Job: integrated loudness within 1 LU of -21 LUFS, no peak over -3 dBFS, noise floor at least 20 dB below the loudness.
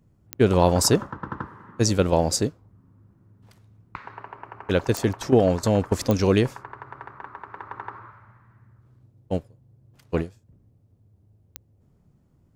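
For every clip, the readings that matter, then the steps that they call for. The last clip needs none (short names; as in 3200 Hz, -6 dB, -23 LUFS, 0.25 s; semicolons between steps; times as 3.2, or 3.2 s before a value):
clicks 4; loudness -23.0 LUFS; peak -4.0 dBFS; loudness target -21.0 LUFS
-> de-click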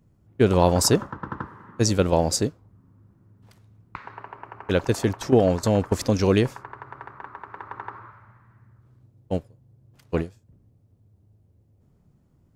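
clicks 0; loudness -23.0 LUFS; peak -4.0 dBFS; loudness target -21.0 LUFS
-> gain +2 dB; limiter -3 dBFS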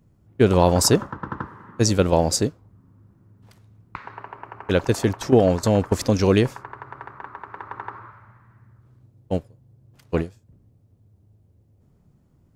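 loudness -21.0 LUFS; peak -3.0 dBFS; noise floor -60 dBFS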